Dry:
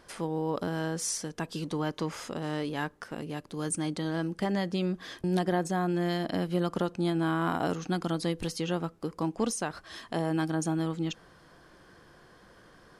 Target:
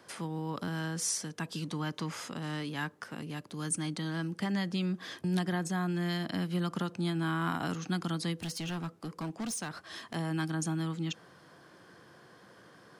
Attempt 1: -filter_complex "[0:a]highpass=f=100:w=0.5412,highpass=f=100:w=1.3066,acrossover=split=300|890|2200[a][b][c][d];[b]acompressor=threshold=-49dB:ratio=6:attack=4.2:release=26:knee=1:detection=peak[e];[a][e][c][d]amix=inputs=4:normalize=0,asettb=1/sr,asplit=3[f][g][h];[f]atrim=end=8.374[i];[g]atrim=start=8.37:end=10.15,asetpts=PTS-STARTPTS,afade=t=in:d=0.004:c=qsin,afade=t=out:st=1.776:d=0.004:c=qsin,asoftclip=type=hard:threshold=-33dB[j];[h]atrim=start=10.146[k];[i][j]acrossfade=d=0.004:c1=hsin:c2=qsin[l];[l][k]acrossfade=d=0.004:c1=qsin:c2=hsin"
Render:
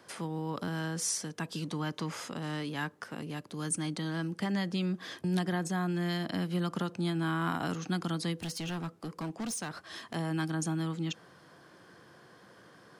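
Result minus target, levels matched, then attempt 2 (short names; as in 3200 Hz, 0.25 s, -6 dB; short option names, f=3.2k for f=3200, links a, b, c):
compressor: peak gain reduction -5.5 dB
-filter_complex "[0:a]highpass=f=100:w=0.5412,highpass=f=100:w=1.3066,acrossover=split=300|890|2200[a][b][c][d];[b]acompressor=threshold=-55.5dB:ratio=6:attack=4.2:release=26:knee=1:detection=peak[e];[a][e][c][d]amix=inputs=4:normalize=0,asettb=1/sr,asplit=3[f][g][h];[f]atrim=end=8.374[i];[g]atrim=start=8.37:end=10.15,asetpts=PTS-STARTPTS,afade=t=in:d=0.004:c=qsin,afade=t=out:st=1.776:d=0.004:c=qsin,asoftclip=type=hard:threshold=-33dB[j];[h]atrim=start=10.146[k];[i][j]acrossfade=d=0.004:c1=hsin:c2=qsin[l];[l][k]acrossfade=d=0.004:c1=qsin:c2=hsin"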